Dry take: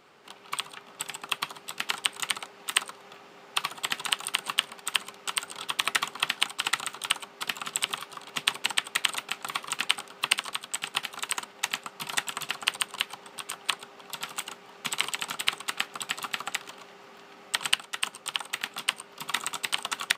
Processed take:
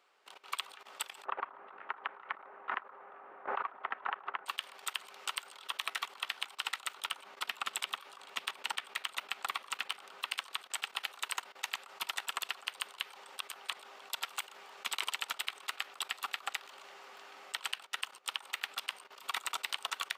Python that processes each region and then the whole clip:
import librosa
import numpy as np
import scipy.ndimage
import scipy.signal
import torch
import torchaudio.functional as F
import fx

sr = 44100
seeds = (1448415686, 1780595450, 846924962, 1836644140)

y = fx.chain(x, sr, fx.lowpass(hz=1600.0, slope=24),
    fx.pre_swell(db_per_s=31.0), at=(1.25, 4.46))
y = fx.chain(y, sr, fx.bass_treble(bass_db=6, treble_db=-3),
    fx.clip_hard(threshold_db=-11.0), at=(7.0, 10.23))
y = scipy.signal.sosfilt(scipy.signal.butter(2, 570.0, 'highpass', fs=sr, output='sos'), y)
y = fx.dynamic_eq(y, sr, hz=8100.0, q=1.6, threshold_db=-48.0, ratio=4.0, max_db=-5)
y = fx.level_steps(y, sr, step_db=18)
y = y * 10.0 ** (1.0 / 20.0)